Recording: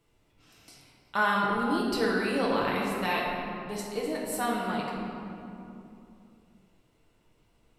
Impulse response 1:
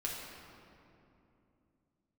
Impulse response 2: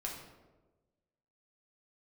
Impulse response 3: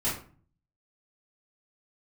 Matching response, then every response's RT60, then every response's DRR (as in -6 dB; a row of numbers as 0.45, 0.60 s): 1; 2.8, 1.2, 0.45 s; -4.0, -2.5, -10.5 dB